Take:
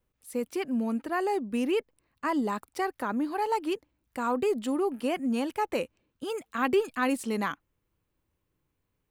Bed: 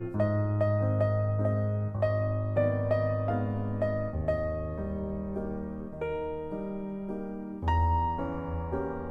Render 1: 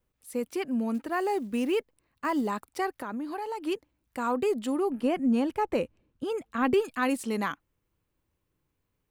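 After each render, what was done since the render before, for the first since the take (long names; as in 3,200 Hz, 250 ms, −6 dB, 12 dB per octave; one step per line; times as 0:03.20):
0:00.94–0:02.48: floating-point word with a short mantissa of 4 bits
0:02.98–0:03.65: downward compressor, threshold −31 dBFS
0:04.90–0:06.74: spectral tilt −2 dB per octave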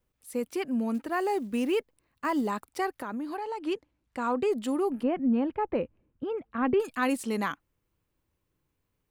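0:03.37–0:04.52: high-frequency loss of the air 55 metres
0:05.03–0:06.80: high-frequency loss of the air 440 metres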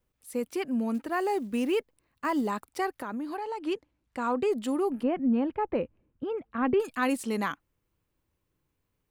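no processing that can be heard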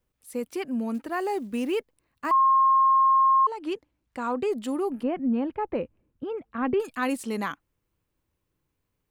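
0:02.31–0:03.47: beep over 1,070 Hz −16 dBFS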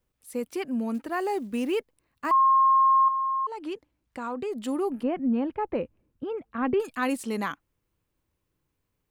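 0:03.08–0:04.60: downward compressor 2 to 1, threshold −32 dBFS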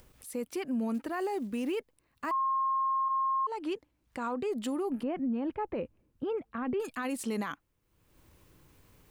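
upward compression, threshold −44 dBFS
brickwall limiter −26 dBFS, peak gain reduction 11.5 dB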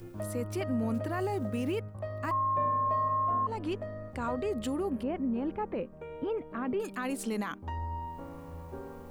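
mix in bed −10.5 dB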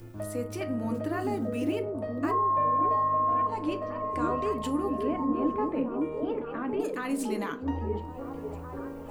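on a send: echo through a band-pass that steps 556 ms, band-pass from 320 Hz, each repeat 0.7 octaves, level −1 dB
on the sum: feedback delay network reverb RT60 0.35 s, low-frequency decay 1.05×, high-frequency decay 0.65×, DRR 5.5 dB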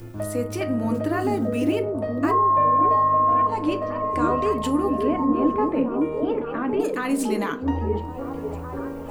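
level +7 dB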